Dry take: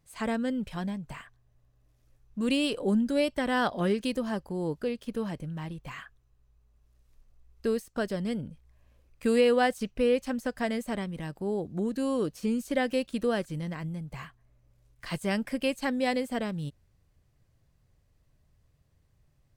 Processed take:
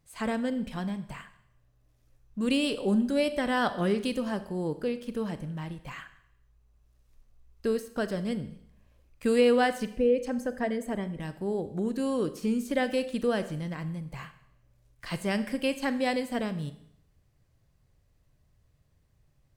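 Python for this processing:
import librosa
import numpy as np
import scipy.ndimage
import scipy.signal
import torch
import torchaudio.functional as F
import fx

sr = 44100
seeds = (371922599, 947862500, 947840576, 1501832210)

y = fx.envelope_sharpen(x, sr, power=1.5, at=(9.92, 11.2))
y = fx.rev_schroeder(y, sr, rt60_s=0.72, comb_ms=29, drr_db=11.5)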